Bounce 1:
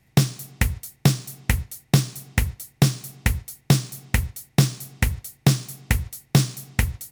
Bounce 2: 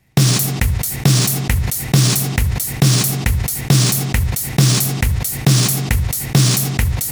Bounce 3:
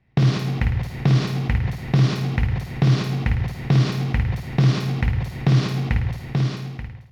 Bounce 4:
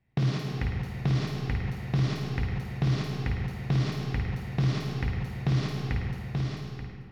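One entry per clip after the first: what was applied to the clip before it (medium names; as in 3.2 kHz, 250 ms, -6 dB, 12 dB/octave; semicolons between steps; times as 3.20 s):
decay stretcher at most 33 dB/s; trim +2.5 dB
fade out at the end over 1.18 s; distance through air 290 m; on a send: flutter echo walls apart 9.1 m, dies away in 0.61 s; on the sum: trim -5 dB
algorithmic reverb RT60 1.9 s, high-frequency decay 0.65×, pre-delay 75 ms, DRR 4 dB; trim -9 dB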